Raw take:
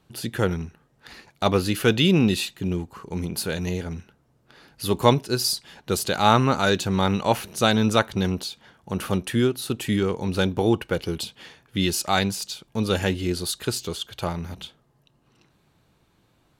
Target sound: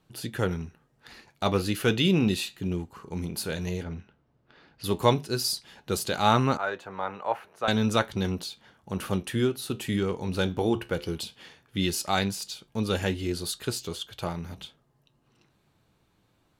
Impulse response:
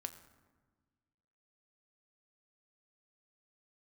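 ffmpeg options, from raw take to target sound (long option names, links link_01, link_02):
-filter_complex "[0:a]asettb=1/sr,asplit=3[link_01][link_02][link_03];[link_01]atrim=end=3.834[link_04];[link_02]atrim=start=3.83:end=4.84,asetpts=PTS-STARTPTS,afade=type=in:duration=0.004:curve=qsin,afade=type=out:start_time=1.006:duration=0.004:curve=qsin,lowpass=3800[link_05];[link_03]atrim=start=4.836[link_06];[link_04][link_05]acrossfade=duration=0.004:curve1=hsin:curve2=qsin[link_07];[link_07][link_06]acrossfade=duration=0.004:curve1=qsin:curve2=hsin,flanger=delay=6.3:depth=6.9:regen=-73:speed=0.14:shape=triangular,asettb=1/sr,asplit=3[link_08][link_09][link_10];[link_08]atrim=end=6.574[link_11];[link_09]atrim=start=6.57:end=7.68,asetpts=PTS-STARTPTS,afade=type=in:duration=0.004:curve=qsin,afade=type=out:start_time=1.106:duration=0.004:curve=qsin,acrossover=split=490 2000:gain=0.1 1 0.0794[link_12][link_13][link_14];[link_12][link_13][link_14]amix=inputs=3:normalize=0[link_15];[link_10]atrim=start=7.676[link_16];[link_11][link_15]acrossfade=duration=0.004:curve1=hsin:curve2=qsin[link_17];[link_17][link_16]acrossfade=duration=0.004:curve1=qsin:curve2=hsin"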